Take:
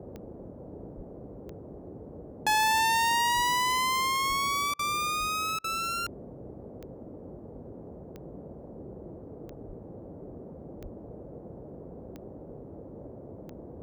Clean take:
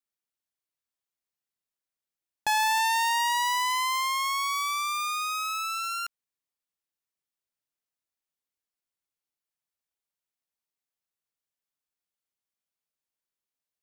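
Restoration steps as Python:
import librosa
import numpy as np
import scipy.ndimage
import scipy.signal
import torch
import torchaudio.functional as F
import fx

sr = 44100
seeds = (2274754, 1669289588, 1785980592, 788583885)

y = fx.fix_declick_ar(x, sr, threshold=10.0)
y = fx.fix_deplosive(y, sr, at_s=(0.96, 3.35, 4.28, 5.19, 9.67, 10.82))
y = fx.fix_interpolate(y, sr, at_s=(4.74, 5.59), length_ms=50.0)
y = fx.noise_reduce(y, sr, print_start_s=13.07, print_end_s=13.57, reduce_db=30.0)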